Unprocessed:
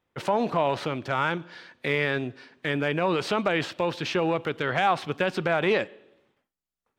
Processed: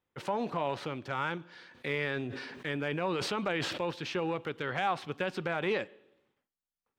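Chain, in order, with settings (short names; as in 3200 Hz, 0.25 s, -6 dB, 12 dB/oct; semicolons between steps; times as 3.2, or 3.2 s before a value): notch 650 Hz, Q 12; 1.48–3.91 sustainer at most 34 dB/s; gain -7.5 dB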